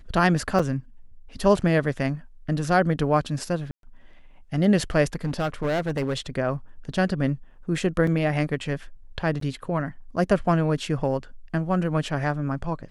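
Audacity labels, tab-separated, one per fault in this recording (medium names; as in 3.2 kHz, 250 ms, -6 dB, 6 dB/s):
0.590000	0.590000	dropout 4.2 ms
3.710000	3.830000	dropout 122 ms
5.150000	6.180000	clipped -21 dBFS
8.070000	8.070000	dropout 3 ms
9.400000	9.410000	dropout 13 ms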